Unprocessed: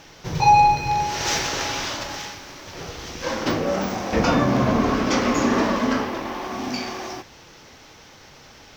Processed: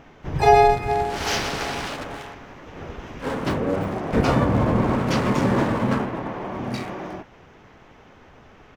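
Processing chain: Wiener smoothing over 9 samples; harmoniser -12 st -1 dB, -3 st -1 dB, +12 st -16 dB; gain -4 dB

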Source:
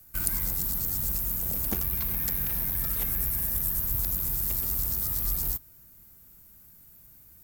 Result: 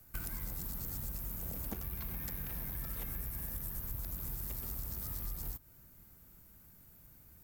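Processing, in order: high shelf 3500 Hz -7.5 dB; wavefolder -16 dBFS; compressor, threshold -37 dBFS, peak gain reduction 11 dB

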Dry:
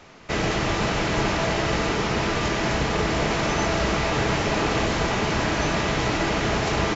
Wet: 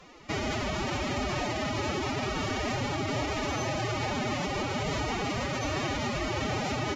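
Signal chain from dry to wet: limiter -18 dBFS, peak gain reduction 7.5 dB; formant-preserving pitch shift +11 st; notch 1600 Hz, Q 9.8; gain -3 dB

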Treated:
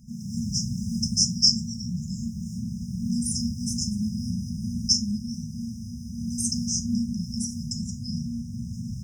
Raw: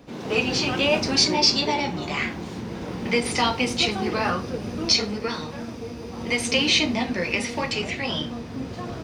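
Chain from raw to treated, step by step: FFT band-reject 240–5000 Hz; gain +3 dB

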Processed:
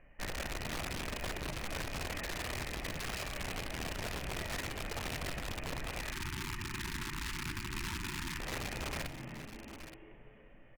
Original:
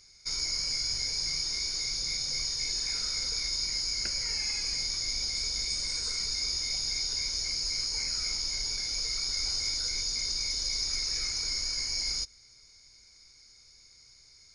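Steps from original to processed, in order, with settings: rattling part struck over -46 dBFS, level -29 dBFS; rippled Chebyshev low-pass 1900 Hz, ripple 6 dB; frequency-shifting echo 0.48 s, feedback 50%, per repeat +74 Hz, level -12 dB; on a send at -6.5 dB: reverb RT60 0.30 s, pre-delay 4 ms; on the sum: wrapped overs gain 41 dB; speed mistake 33 rpm record played at 45 rpm; tapped delay 62/873 ms -18.5/-16.5 dB; limiter -43.5 dBFS, peak gain reduction 6 dB; spectral delete 6.13–8.4, 390–860 Hz; Doppler distortion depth 0.11 ms; gain +11.5 dB

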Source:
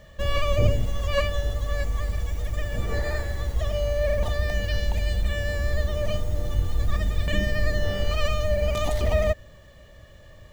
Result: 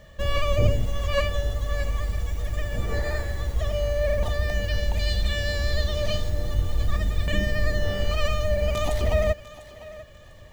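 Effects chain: 4.99–6.3 bell 4200 Hz +11 dB 1 oct; on a send: thinning echo 0.698 s, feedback 31%, high-pass 390 Hz, level -16 dB

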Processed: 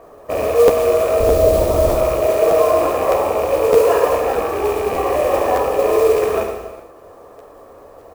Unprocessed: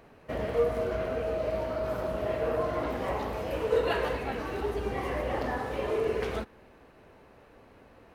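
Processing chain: rattling part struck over -38 dBFS, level -22 dBFS; LPF 2600 Hz; band shelf 610 Hz +11.5 dB 2.4 oct; comb 1.7 ms, depth 38%; 1.2–1.96 tilt -4.5 dB/oct; in parallel at -2 dB: limiter -11.5 dBFS, peak gain reduction 8.5 dB; on the sum: modulation noise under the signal 21 dB; on a send: flutter echo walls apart 12 m, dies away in 0.48 s; on the sum: non-linear reverb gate 0.45 s falling, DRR 3 dB; crackling interface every 0.61 s, samples 512, repeat, from 0.67; gain -3.5 dB

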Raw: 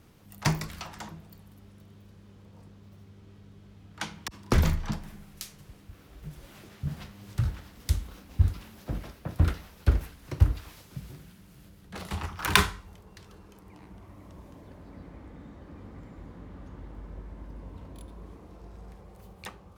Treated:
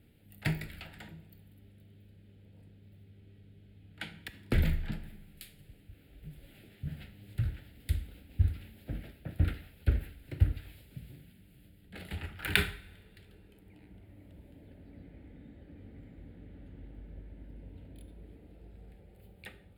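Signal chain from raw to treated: fixed phaser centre 2600 Hz, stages 4; dynamic EQ 1500 Hz, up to +5 dB, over -56 dBFS, Q 1.2; two-slope reverb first 0.52 s, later 1.9 s, DRR 11 dB; gain -5 dB

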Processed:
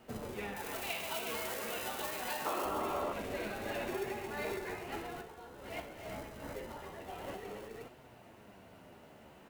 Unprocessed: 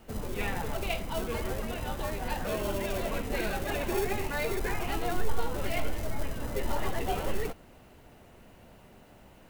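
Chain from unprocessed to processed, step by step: 0.56–2.65 tilt +3 dB/oct; tapped delay 41/60/128/258/291/359 ms -10/-9.5/-10/-9.5/-14.5/-9 dB; 2.45–3.13 painted sound noise 260–1400 Hz -28 dBFS; flange 0.25 Hz, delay 7.7 ms, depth 8.6 ms, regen +57%; compressor 6:1, threshold -34 dBFS, peak gain reduction 16.5 dB; HPF 180 Hz 6 dB/oct; high shelf 4100 Hz -5 dB; gain +2.5 dB

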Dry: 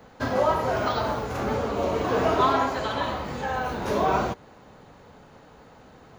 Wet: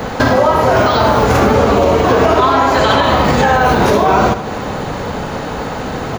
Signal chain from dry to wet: compressor 12:1, threshold -35 dBFS, peak gain reduction 19 dB; feedback echo 75 ms, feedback 55%, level -13 dB; maximiser +29.5 dB; gain -1 dB

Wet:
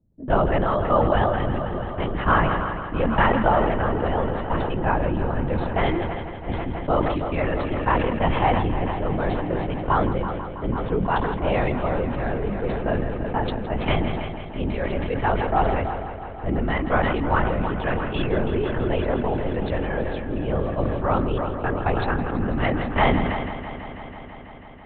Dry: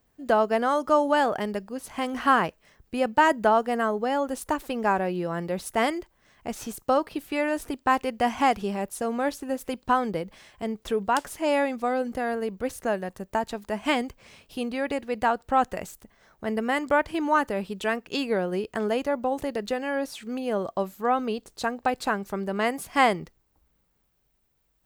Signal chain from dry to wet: bell 140 Hz +10 dB 1.4 oct; low-pass opened by the level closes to 310 Hz, open at -21 dBFS; LPC vocoder at 8 kHz whisper; multi-head echo 0.164 s, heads first and second, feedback 74%, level -15.5 dB; sustainer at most 29 dB/s

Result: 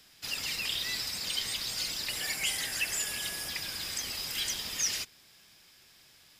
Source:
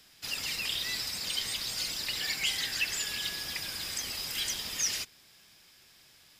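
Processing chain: 2.09–3.49 fifteen-band EQ 630 Hz +4 dB, 4000 Hz -6 dB, 10000 Hz +8 dB

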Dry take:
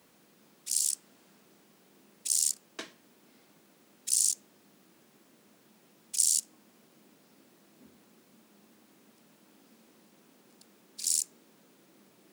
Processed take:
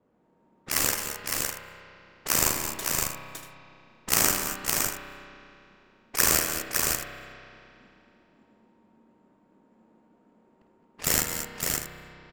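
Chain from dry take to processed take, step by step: careless resampling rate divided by 6×, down none, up zero stuff; low-pass opened by the level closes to 660 Hz, open at -29.5 dBFS; on a send: tapped delay 52/213/226/560/639 ms -9.5/-11.5/-12/-4/-13.5 dB; on the sum: spring tank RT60 2.7 s, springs 31 ms, chirp 25 ms, DRR 6 dB; gain -3 dB

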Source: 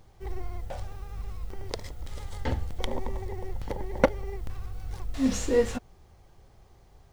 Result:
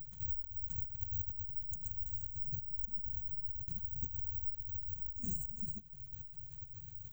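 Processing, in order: Chebyshev band-stop 210–5200 Hz, order 5; bell 5600 Hz +12.5 dB 0.5 oct; compressor 12:1, threshold -44 dBFS, peak gain reduction 21 dB; formant-preserving pitch shift +10.5 st; careless resampling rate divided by 2×, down none, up zero stuff; gain +8 dB

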